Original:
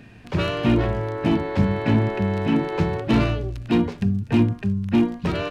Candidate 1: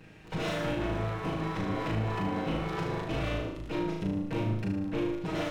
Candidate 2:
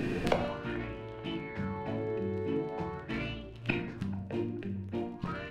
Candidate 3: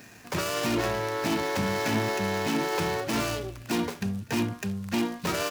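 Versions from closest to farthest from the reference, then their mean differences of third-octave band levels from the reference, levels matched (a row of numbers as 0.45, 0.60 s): 2, 1, 3; 5.5, 7.0, 10.0 dB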